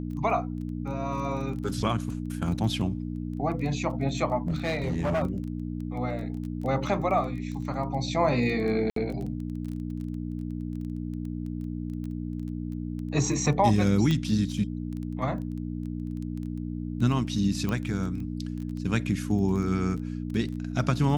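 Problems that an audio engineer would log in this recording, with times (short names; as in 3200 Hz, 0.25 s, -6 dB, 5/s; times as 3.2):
crackle 13/s -34 dBFS
hum 60 Hz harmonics 5 -33 dBFS
4.47–5.23 clipped -23 dBFS
8.9–8.96 gap 63 ms
14.11 pop -15 dBFS
17.69 pop -17 dBFS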